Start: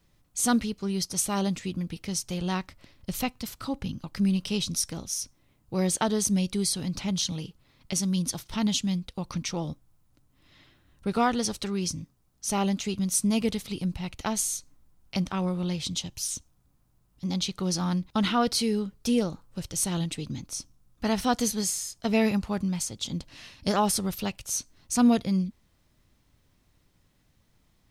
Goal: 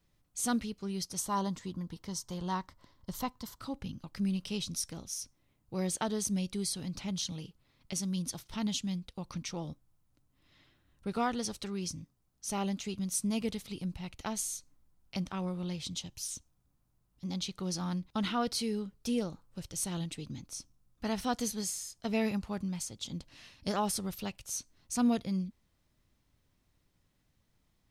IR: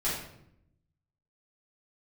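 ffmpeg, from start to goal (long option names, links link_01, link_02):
-filter_complex "[0:a]asettb=1/sr,asplit=3[link_01][link_02][link_03];[link_01]atrim=end=1.194[link_04];[link_02]atrim=start=1.19:end=3.61,asetpts=PTS-STARTPTS,afade=type=in:duration=0.004:curve=qsin,afade=type=out:start_time=2.416:duration=0.004:curve=qsin,equalizer=frequency=1000:width_type=o:width=0.33:gain=12,equalizer=frequency=2500:width_type=o:width=0.33:gain=-12,equalizer=frequency=10000:width_type=o:width=0.33:gain=-5[link_05];[link_03]atrim=start=3.606[link_06];[link_04][link_05]acrossfade=duration=0.004:curve1=hsin:curve2=qsin[link_07];[link_07][link_06]acrossfade=duration=0.004:curve1=qsin:curve2=hsin,volume=-7.5dB"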